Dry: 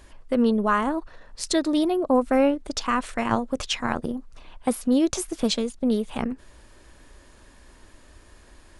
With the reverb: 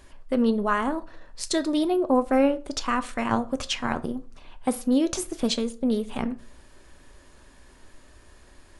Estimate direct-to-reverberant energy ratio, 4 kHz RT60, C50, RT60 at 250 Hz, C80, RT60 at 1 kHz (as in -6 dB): 11.0 dB, 0.30 s, 19.0 dB, 0.60 s, 23.5 dB, 0.40 s